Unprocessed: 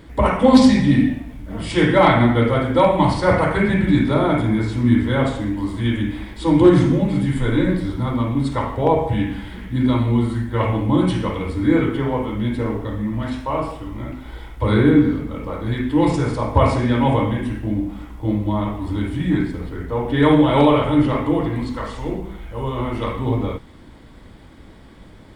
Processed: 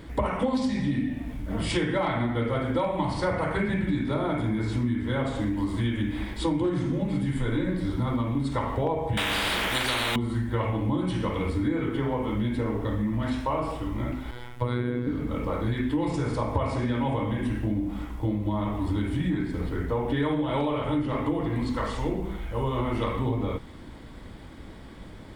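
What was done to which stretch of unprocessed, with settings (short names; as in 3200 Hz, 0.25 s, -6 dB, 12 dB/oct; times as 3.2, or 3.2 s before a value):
9.17–10.16 spectral compressor 10:1
14.31–15.07 robotiser 122 Hz
whole clip: compressor 10:1, threshold -23 dBFS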